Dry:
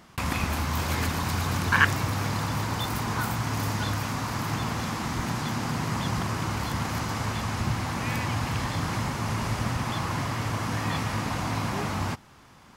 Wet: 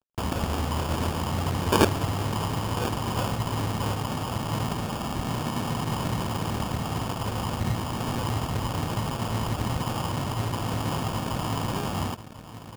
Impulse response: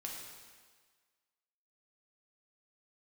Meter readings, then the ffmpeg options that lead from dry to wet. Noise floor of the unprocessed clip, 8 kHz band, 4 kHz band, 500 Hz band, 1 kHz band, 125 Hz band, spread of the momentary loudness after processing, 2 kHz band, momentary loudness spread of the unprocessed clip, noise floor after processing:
−52 dBFS, −1.5 dB, 0.0 dB, +5.0 dB, 0.0 dB, +0.5 dB, 2 LU, −7.5 dB, 2 LU, −41 dBFS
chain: -filter_complex "[0:a]asplit=2[link_01][link_02];[link_02]adelay=1043,lowpass=frequency=1300:poles=1,volume=-10.5dB,asplit=2[link_03][link_04];[link_04]adelay=1043,lowpass=frequency=1300:poles=1,volume=0.4,asplit=2[link_05][link_06];[link_06]adelay=1043,lowpass=frequency=1300:poles=1,volume=0.4,asplit=2[link_07][link_08];[link_08]adelay=1043,lowpass=frequency=1300:poles=1,volume=0.4[link_09];[link_01][link_03][link_05][link_07][link_09]amix=inputs=5:normalize=0,acrusher=samples=22:mix=1:aa=0.000001,aeval=exprs='sgn(val(0))*max(abs(val(0))-0.00596,0)':channel_layout=same,volume=1dB"

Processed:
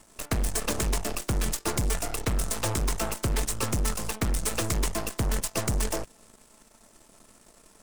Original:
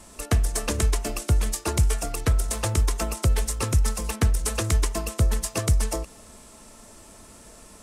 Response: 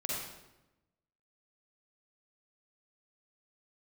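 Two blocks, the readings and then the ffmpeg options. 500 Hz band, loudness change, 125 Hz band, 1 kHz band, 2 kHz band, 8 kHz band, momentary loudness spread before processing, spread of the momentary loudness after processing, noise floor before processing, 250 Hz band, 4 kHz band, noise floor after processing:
−1.5 dB, −4.0 dB, −7.0 dB, −1.0 dB, −1.0 dB, −1.5 dB, 3 LU, 2 LU, −49 dBFS, −1.0 dB, −1.0 dB, −58 dBFS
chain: -af "volume=20.5dB,asoftclip=hard,volume=-20.5dB,aeval=exprs='0.1*(cos(1*acos(clip(val(0)/0.1,-1,1)))-cos(1*PI/2))+0.0224*(cos(3*acos(clip(val(0)/0.1,-1,1)))-cos(3*PI/2))+0.0178*(cos(6*acos(clip(val(0)/0.1,-1,1)))-cos(6*PI/2))':channel_layout=same,equalizer=frequency=68:width=1.9:gain=-9"

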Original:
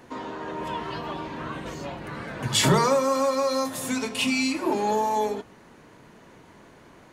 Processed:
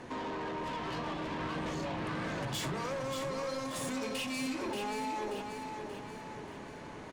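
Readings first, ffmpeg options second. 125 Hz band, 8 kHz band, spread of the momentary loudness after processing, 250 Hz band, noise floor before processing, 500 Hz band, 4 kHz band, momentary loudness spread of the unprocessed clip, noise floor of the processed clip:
−10.0 dB, −13.0 dB, 9 LU, −9.0 dB, −52 dBFS, −11.5 dB, −11.5 dB, 15 LU, −46 dBFS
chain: -filter_complex "[0:a]lowpass=frequency=11000:width=0.5412,lowpass=frequency=11000:width=1.3066,highshelf=frequency=7700:gain=-6,acompressor=threshold=-32dB:ratio=10,asoftclip=type=tanh:threshold=-38dB,bandreject=frequency=1400:width=22,asplit=2[link_01][link_02];[link_02]aecho=0:1:582|1164|1746|2328|2910|3492:0.501|0.246|0.12|0.059|0.0289|0.0142[link_03];[link_01][link_03]amix=inputs=2:normalize=0,volume=3.5dB"

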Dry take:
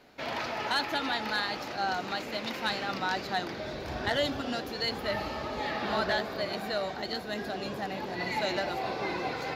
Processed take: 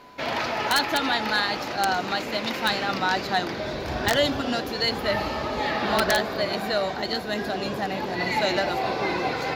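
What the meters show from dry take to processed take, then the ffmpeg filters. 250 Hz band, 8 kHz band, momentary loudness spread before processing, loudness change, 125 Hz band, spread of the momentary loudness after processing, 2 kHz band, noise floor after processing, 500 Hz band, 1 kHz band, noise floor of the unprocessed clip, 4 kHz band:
+7.0 dB, +11.0 dB, 6 LU, +7.0 dB, +7.0 dB, 6 LU, +7.0 dB, −32 dBFS, +7.0 dB, +7.0 dB, −39 dBFS, +7.0 dB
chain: -af "aeval=exprs='val(0)+0.00178*sin(2*PI*1000*n/s)':channel_layout=same,aeval=exprs='(mod(8.41*val(0)+1,2)-1)/8.41':channel_layout=same,volume=7dB"

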